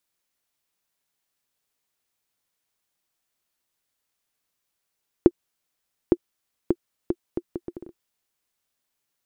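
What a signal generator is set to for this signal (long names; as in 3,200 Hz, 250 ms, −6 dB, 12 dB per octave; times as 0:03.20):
bouncing ball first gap 0.86 s, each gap 0.68, 348 Hz, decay 50 ms −1.5 dBFS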